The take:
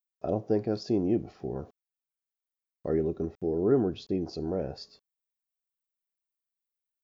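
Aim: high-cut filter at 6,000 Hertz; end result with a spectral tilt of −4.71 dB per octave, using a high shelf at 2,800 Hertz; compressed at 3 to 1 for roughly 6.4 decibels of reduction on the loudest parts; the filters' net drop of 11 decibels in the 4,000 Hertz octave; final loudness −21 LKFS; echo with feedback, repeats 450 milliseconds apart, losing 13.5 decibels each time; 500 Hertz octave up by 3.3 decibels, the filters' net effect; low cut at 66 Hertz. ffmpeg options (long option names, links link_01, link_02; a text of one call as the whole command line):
ffmpeg -i in.wav -af "highpass=66,lowpass=6000,equalizer=frequency=500:width_type=o:gain=4.5,highshelf=frequency=2800:gain=-4.5,equalizer=frequency=4000:width_type=o:gain=-8.5,acompressor=threshold=-25dB:ratio=3,aecho=1:1:450|900:0.211|0.0444,volume=10.5dB" out.wav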